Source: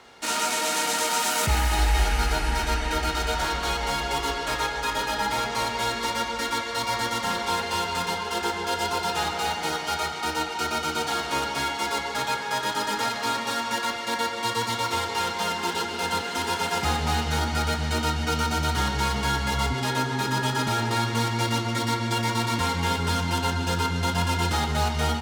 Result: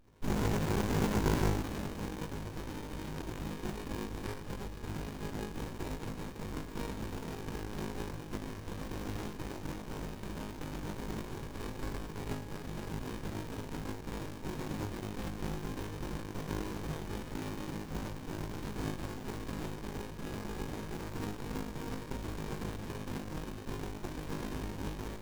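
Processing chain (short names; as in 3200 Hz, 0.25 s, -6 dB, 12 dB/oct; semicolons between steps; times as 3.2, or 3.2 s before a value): band-pass 6700 Hz, Q 7.7; flutter echo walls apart 3.3 m, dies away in 0.74 s; running maximum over 65 samples; gain +8 dB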